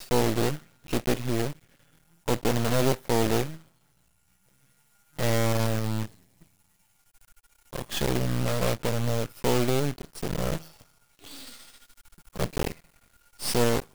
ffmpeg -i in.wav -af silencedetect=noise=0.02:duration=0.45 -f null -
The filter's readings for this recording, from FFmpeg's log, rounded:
silence_start: 1.52
silence_end: 2.28 | silence_duration: 0.76
silence_start: 3.56
silence_end: 5.19 | silence_duration: 1.63
silence_start: 6.06
silence_end: 7.73 | silence_duration: 1.67
silence_start: 10.63
silence_end: 11.25 | silence_duration: 0.62
silence_start: 11.56
silence_end: 12.36 | silence_duration: 0.80
silence_start: 12.72
silence_end: 13.40 | silence_duration: 0.68